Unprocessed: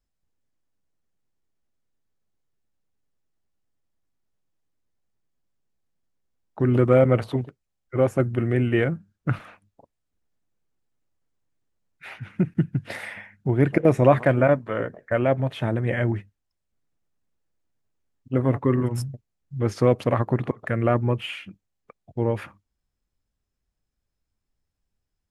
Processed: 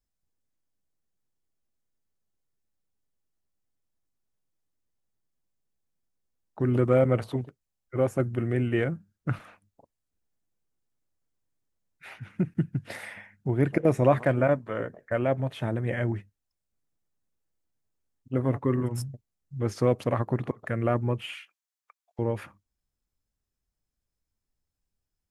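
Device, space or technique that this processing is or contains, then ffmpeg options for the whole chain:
exciter from parts: -filter_complex "[0:a]asettb=1/sr,asplit=3[a][b][c];[a]atrim=end=21.344[d];[b]atrim=start=21.34:end=22.19,asetpts=PTS-STARTPTS,afade=t=in:d=0.004:c=qsin,afade=t=out:st=0.846:d=0.004:c=qsin,highpass=f=930:w=0.5412,highpass=f=930:w=1.3066[e];[c]atrim=start=22.186[f];[d][e]acrossfade=d=0.004:c1=hsin:c2=qsin[g];[g][f]acrossfade=d=0.004:c1=qsin:c2=hsin,asplit=2[h][i];[i]highpass=4.2k,asoftclip=type=tanh:threshold=-34.5dB,volume=-4dB[j];[h][j]amix=inputs=2:normalize=0,volume=-4.5dB"

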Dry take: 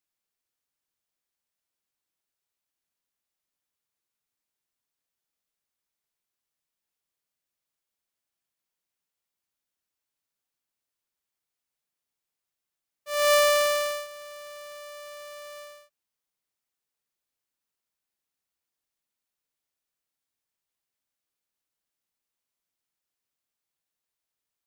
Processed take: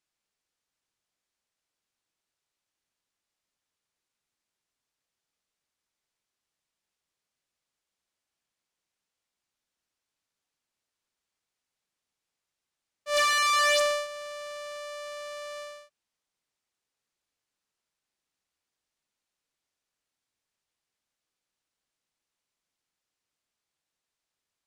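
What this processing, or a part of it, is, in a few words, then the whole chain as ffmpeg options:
overflowing digital effects unit: -af "aeval=exprs='(mod(12.6*val(0)+1,2)-1)/12.6':c=same,lowpass=8.3k,volume=3.5dB"

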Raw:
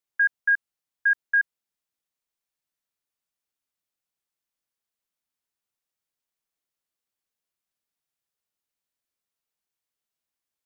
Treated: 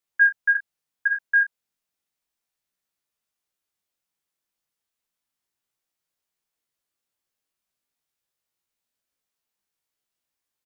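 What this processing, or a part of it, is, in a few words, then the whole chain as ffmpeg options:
double-tracked vocal: -filter_complex "[0:a]asplit=2[a][b];[b]adelay=34,volume=-12dB[c];[a][c]amix=inputs=2:normalize=0,flanger=delay=17:depth=3.4:speed=0.35,volume=6dB"

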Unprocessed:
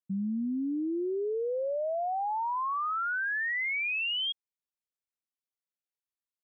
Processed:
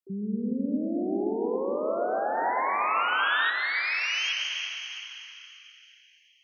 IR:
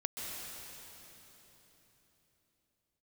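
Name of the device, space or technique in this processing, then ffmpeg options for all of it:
shimmer-style reverb: -filter_complex "[0:a]asplit=2[a][b];[b]asetrate=88200,aresample=44100,atempo=0.5,volume=-12dB[c];[a][c]amix=inputs=2:normalize=0[d];[1:a]atrim=start_sample=2205[e];[d][e]afir=irnorm=-1:irlink=0,asettb=1/sr,asplit=3[f][g][h];[f]atrim=end=2.374[i];[g]atrim=start=2.37:end=3.5,asetpts=PTS-STARTPTS,afade=t=in:d=0.004:c=qsin,afade=t=out:st=1.126:d=0.004:c=qsin,highshelf=f=2.2k:g=11[j];[h]atrim=start=3.496[k];[i][j]acrossfade=d=0.004:c1=hsin:c2=qsin[l];[l][k]acrossfade=d=0.004:c1=qsin:c2=hsin"

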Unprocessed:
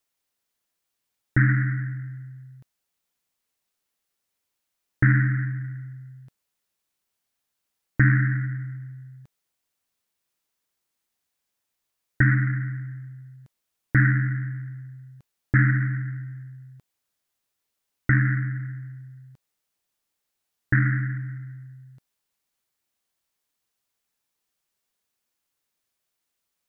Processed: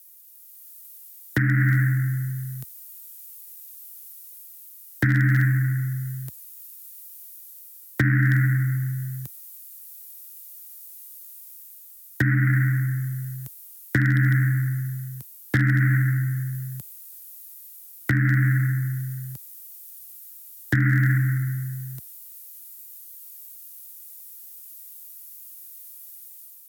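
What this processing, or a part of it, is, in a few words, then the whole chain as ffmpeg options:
FM broadcast chain: -filter_complex "[0:a]highpass=f=63:w=0.5412,highpass=f=63:w=1.3066,dynaudnorm=f=240:g=5:m=7dB,acrossover=split=100|230|490|1300[a][b][c][d][e];[a]acompressor=threshold=-31dB:ratio=4[f];[b]acompressor=threshold=-27dB:ratio=4[g];[c]acompressor=threshold=-28dB:ratio=4[h];[d]acompressor=threshold=-48dB:ratio=4[i];[e]acompressor=threshold=-30dB:ratio=4[j];[f][g][h][i][j]amix=inputs=5:normalize=0,aemphasis=mode=production:type=50fm,alimiter=limit=-15dB:level=0:latency=1:release=356,asoftclip=type=hard:threshold=-17.5dB,lowpass=f=15k:w=0.5412,lowpass=f=15k:w=1.3066,aemphasis=mode=production:type=50fm,volume=6dB"

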